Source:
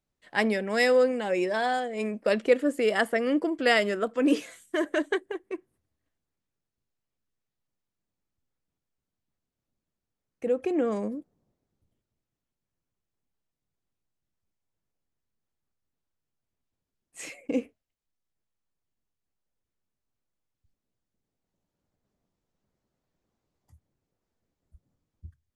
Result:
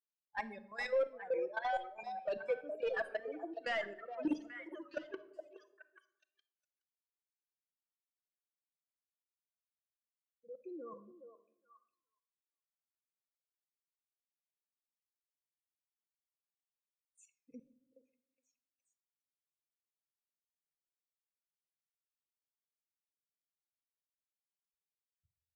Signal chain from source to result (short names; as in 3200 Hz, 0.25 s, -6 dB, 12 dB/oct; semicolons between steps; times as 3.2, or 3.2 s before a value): per-bin expansion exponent 3; HPF 430 Hz 12 dB/oct; high shelf 2600 Hz +6.5 dB; level quantiser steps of 16 dB; overloaded stage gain 30 dB; tape spacing loss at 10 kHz 25 dB; on a send: delay with a stepping band-pass 0.418 s, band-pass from 600 Hz, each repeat 1.4 oct, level -6 dB; on the sum: shoebox room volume 2000 m³, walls furnished, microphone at 0.78 m; record warp 33 1/3 rpm, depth 100 cents; gain +2 dB